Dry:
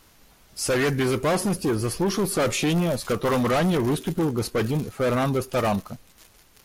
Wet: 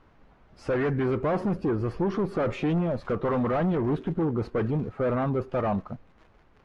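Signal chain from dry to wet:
low-pass filter 1,500 Hz 12 dB per octave
brickwall limiter −20.5 dBFS, peak gain reduction 4.5 dB

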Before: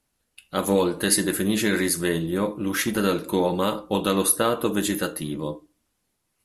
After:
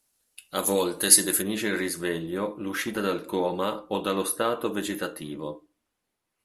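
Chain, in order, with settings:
bass and treble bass −7 dB, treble +9 dB, from 0:01.41 treble −6 dB
level −3 dB

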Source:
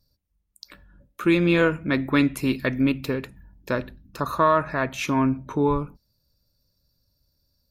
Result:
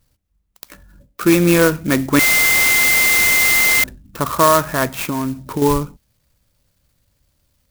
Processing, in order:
0:02.19–0:03.84: beep over 2,080 Hz −17 dBFS
0:04.93–0:05.62: downward compressor 3 to 1, threshold −27 dBFS, peak gain reduction 8 dB
converter with an unsteady clock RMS 0.058 ms
level +6.5 dB

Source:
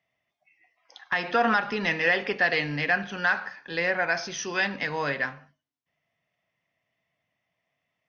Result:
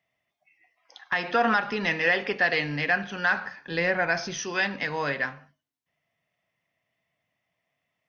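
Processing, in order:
0:03.31–0:04.40: low-shelf EQ 240 Hz +9 dB

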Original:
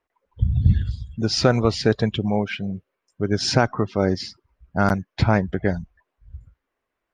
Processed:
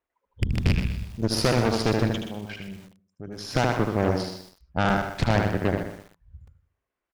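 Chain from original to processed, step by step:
loose part that buzzes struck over −13 dBFS, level −12 dBFS
0:02.18–0:03.55: output level in coarse steps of 16 dB
on a send: repeating echo 76 ms, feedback 39%, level −5 dB
on the sum: harmonic generator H 8 −14 dB, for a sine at −1.5 dBFS
feedback echo at a low word length 125 ms, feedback 35%, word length 6 bits, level −9 dB
level −7 dB

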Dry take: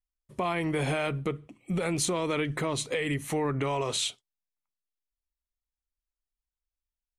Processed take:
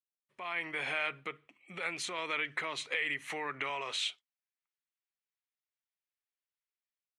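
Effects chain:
automatic gain control gain up to 11.5 dB
resonant band-pass 2,100 Hz, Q 1.4
0:02.18–0:03.70: multiband upward and downward compressor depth 40%
level −9 dB

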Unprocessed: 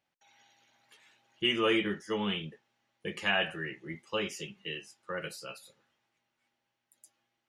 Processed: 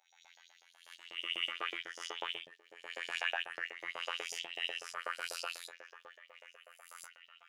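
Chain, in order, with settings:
peak hold with a rise ahead of every peak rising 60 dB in 0.78 s
0:01.80–0:02.22: graphic EQ with 15 bands 400 Hz −6 dB, 1,000 Hz −11 dB, 6,300 Hz +5 dB
downward compressor 5 to 1, threshold −39 dBFS, peak gain reduction 15.5 dB
on a send: echo through a band-pass that steps 639 ms, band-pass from 400 Hz, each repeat 0.7 octaves, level −6 dB
on the sum: phases set to zero 85.5 Hz
in parallel at −4 dB: slack as between gear wheels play −40 dBFS
on the sum: auto-filter high-pass saw up 8.1 Hz 570–6,200 Hz

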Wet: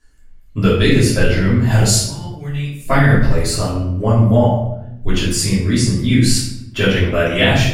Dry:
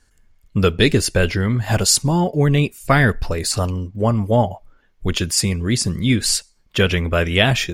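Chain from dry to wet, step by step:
0:02.04–0:02.80: guitar amp tone stack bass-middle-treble 5-5-5
rectangular room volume 210 cubic metres, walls mixed, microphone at 3 metres
boost into a limiter −6.5 dB
level −1 dB

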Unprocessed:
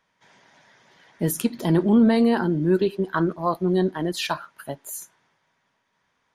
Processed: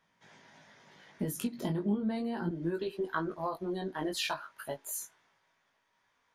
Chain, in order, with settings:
parametric band 170 Hz +4 dB 1.7 octaves, from 0:02.49 −7.5 dB
downward compressor 6 to 1, threshold −27 dBFS, peak gain reduction 15.5 dB
chorus effect 0.37 Hz, delay 18 ms, depth 2.6 ms

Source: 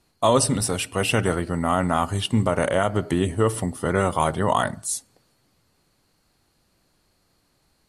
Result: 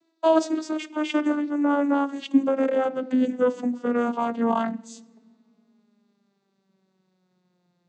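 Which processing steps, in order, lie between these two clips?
vocoder with a gliding carrier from E4, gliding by −11 semitones
on a send: flat-topped bell 940 Hz −15.5 dB + convolution reverb RT60 2.3 s, pre-delay 4 ms, DRR 23 dB

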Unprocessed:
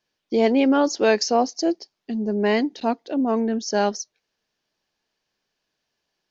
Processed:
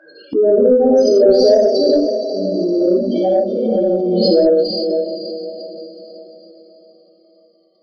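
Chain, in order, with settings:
gliding playback speed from 94% → 67%
spectral peaks only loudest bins 4
four-pole ladder high-pass 380 Hz, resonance 25%
parametric band 4,700 Hz +9.5 dB 0.28 octaves
on a send: feedback delay with all-pass diffusion 509 ms, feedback 44%, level −7.5 dB
on the sum: reverb whose tail is shaped and stops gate 200 ms flat, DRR −7.5 dB
in parallel at −4 dB: soft clipping −16.5 dBFS, distortion −17 dB
on the sum: spectral tilt −3.5 dB per octave
background raised ahead of every attack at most 20 dB per second
level +2.5 dB

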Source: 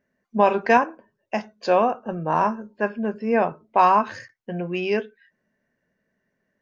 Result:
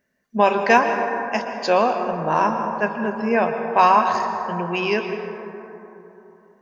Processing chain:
high-shelf EQ 2,100 Hz +9 dB
dense smooth reverb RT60 3.4 s, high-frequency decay 0.3×, pre-delay 105 ms, DRR 5.5 dB

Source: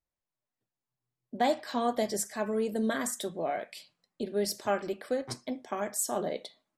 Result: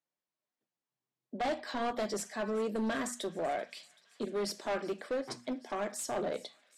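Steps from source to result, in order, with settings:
high-pass filter 160 Hz 24 dB per octave
gain into a clipping stage and back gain 29 dB
high-frequency loss of the air 52 metres
mains-hum notches 60/120/180/240 Hz
delay with a high-pass on its return 385 ms, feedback 80%, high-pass 2,200 Hz, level −21 dB

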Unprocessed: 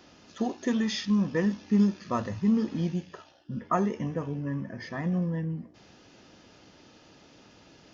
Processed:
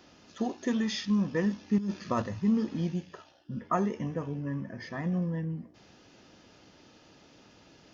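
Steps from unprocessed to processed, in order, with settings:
0:01.78–0:02.22: compressor whose output falls as the input rises −28 dBFS, ratio −1
level −2 dB

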